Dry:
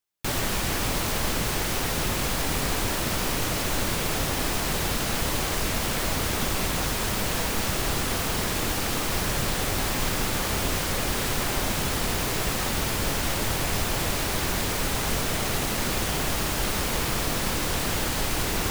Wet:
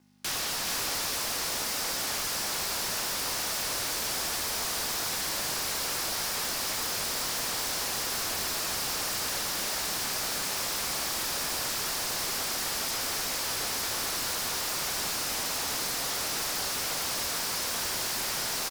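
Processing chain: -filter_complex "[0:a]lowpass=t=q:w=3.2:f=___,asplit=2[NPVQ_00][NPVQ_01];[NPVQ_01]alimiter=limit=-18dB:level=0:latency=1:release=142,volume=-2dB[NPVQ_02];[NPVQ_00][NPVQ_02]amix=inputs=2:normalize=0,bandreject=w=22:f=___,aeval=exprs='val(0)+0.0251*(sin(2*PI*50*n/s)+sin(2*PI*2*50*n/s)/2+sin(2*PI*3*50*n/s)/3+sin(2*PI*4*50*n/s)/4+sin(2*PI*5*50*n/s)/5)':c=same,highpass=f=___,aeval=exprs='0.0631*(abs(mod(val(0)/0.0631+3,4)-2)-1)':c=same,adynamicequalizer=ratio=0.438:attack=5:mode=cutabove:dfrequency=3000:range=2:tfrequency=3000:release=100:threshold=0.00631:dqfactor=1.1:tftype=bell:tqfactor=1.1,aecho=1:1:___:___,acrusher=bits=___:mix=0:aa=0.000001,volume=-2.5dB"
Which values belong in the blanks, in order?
5200, 2000, 620, 430, 0.501, 10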